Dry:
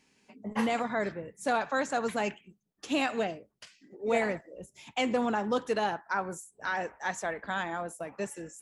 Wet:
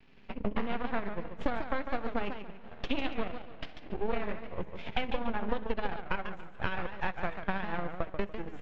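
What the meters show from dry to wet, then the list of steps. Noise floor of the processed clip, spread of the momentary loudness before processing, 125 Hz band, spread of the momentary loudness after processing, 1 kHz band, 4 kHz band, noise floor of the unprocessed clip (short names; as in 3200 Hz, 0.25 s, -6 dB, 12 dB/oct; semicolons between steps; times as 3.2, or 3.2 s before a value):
-46 dBFS, 11 LU, +3.5 dB, 8 LU, -5.0 dB, -3.5 dB, -74 dBFS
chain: flutter echo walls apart 10.9 m, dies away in 0.33 s; two-slope reverb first 0.23 s, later 3.5 s, from -21 dB, DRR 9.5 dB; transient shaper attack +9 dB, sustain -10 dB; compressor 6:1, threshold -38 dBFS, peak gain reduction 19 dB; vibrato 0.33 Hz 14 cents; half-wave rectifier; LPF 3500 Hz 24 dB/oct; low shelf 170 Hz +7 dB; warbling echo 0.144 s, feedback 31%, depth 198 cents, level -8.5 dB; gain +8.5 dB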